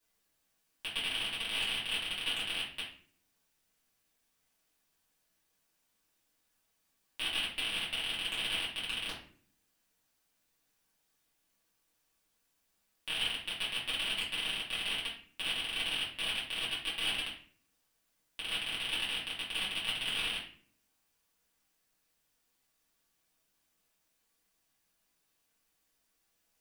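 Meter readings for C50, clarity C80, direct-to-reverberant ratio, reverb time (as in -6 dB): 5.5 dB, 9.5 dB, -8.5 dB, 0.50 s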